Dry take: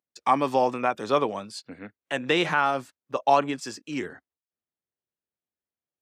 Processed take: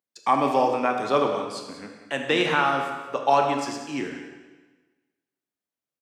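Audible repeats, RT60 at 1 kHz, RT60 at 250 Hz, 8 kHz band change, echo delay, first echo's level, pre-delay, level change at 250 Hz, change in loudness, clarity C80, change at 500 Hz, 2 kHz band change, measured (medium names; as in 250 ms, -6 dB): 1, 1.3 s, 1.3 s, +1.5 dB, 186 ms, -13.0 dB, 24 ms, +2.0 dB, +1.5 dB, 6.0 dB, +2.0 dB, +1.5 dB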